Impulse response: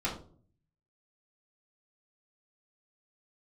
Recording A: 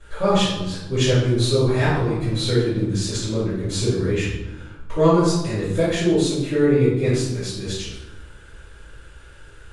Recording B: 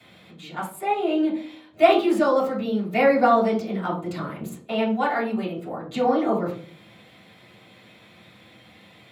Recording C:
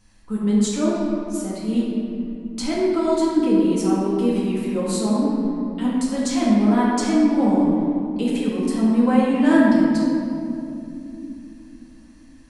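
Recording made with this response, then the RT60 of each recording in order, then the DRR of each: B; 1.1, 0.45, 2.9 s; -16.0, -8.0, -7.0 dB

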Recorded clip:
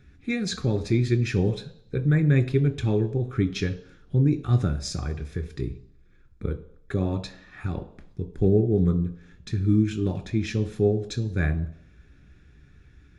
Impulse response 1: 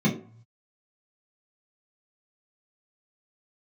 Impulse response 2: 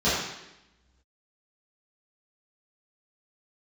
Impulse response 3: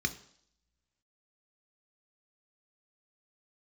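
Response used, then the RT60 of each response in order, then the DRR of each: 3; 0.45, 0.90, 0.65 s; -6.0, -13.0, 7.5 dB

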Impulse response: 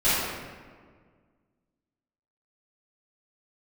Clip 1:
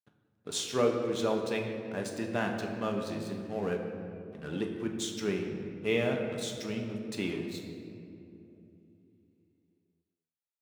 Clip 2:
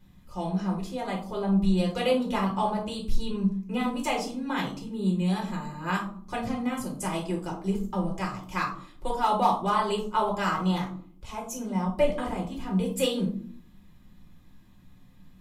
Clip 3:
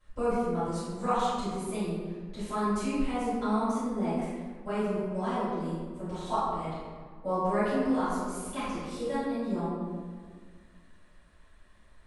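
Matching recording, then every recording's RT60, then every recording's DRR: 3; 2.9, 0.55, 1.7 s; 1.5, -2.0, -16.5 dB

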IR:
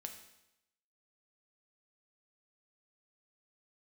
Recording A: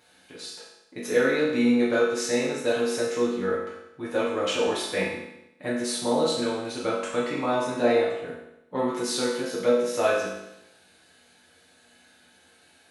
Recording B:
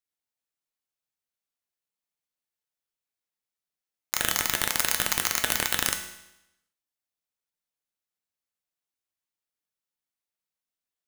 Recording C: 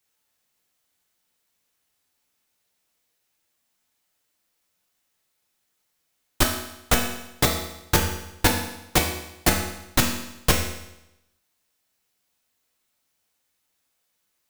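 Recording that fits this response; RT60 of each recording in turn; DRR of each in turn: B; 0.85, 0.85, 0.85 s; -8.0, 4.0, 0.0 dB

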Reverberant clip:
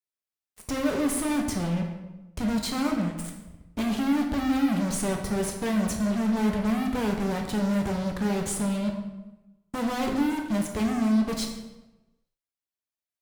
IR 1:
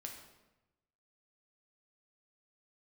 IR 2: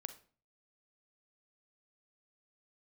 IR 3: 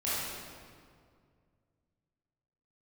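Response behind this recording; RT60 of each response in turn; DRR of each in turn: 1; 1.0, 0.40, 2.1 s; 1.5, 10.0, -11.0 dB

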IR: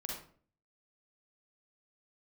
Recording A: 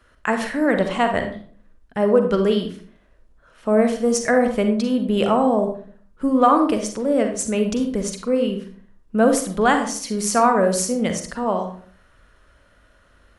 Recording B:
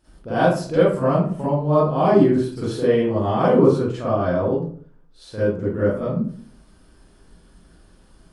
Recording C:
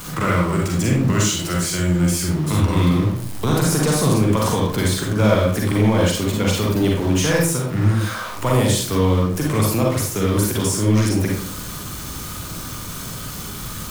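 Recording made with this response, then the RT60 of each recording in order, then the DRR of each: C; 0.50, 0.50, 0.50 s; 5.5, -11.5, -2.5 dB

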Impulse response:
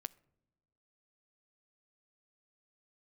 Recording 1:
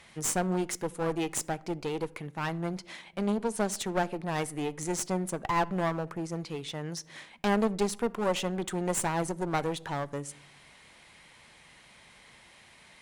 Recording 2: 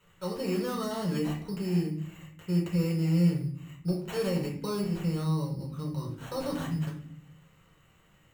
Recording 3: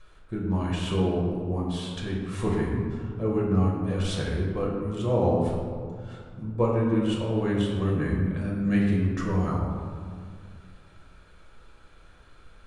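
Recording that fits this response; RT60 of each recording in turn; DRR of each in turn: 1; not exponential, 0.50 s, 2.1 s; 18.5, -2.5, -3.5 dB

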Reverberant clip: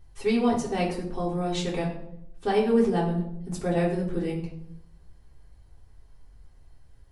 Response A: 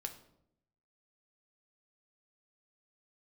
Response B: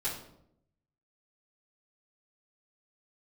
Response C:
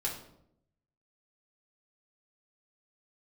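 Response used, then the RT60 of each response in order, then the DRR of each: C; 0.75, 0.75, 0.75 s; 4.0, -14.0, -5.5 dB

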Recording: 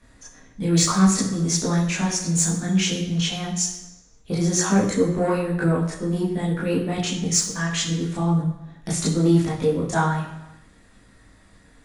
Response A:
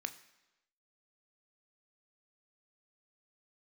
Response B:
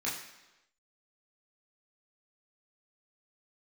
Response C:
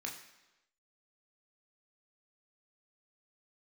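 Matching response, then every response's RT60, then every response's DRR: B; 1.0, 1.0, 1.0 s; 9.0, -7.0, -0.5 dB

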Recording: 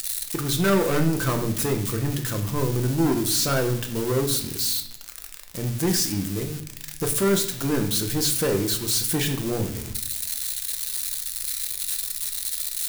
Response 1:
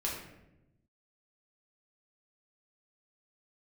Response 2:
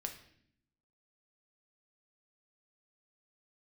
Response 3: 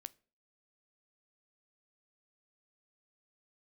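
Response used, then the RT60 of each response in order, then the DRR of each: 2; 0.90, 0.65, 0.40 s; -4.5, 4.0, 16.5 dB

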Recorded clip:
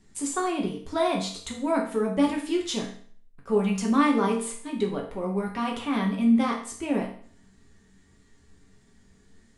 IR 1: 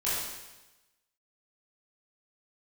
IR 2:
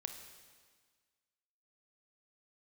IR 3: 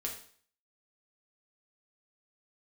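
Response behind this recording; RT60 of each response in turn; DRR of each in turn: 3; 1.1, 1.6, 0.50 s; -11.0, 5.5, -1.0 dB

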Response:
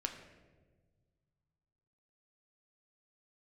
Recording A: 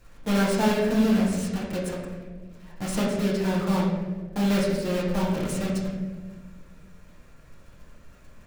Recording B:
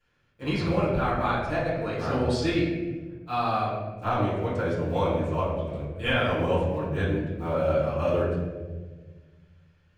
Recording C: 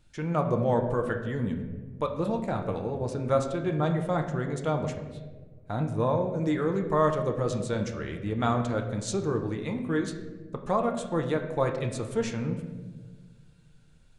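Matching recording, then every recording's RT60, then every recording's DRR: C; 1.4, 1.4, 1.4 s; -6.0, -12.5, 3.5 dB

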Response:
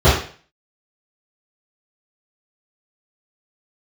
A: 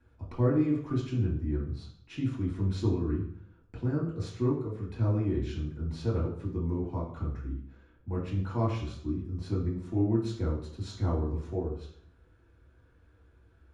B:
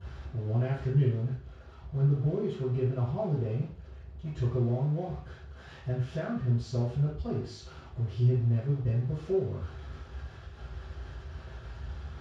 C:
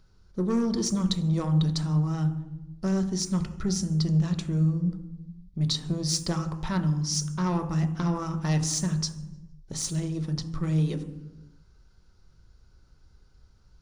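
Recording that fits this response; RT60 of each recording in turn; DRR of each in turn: B; 0.60, 0.45, 1.1 s; -5.0, -16.0, 5.5 dB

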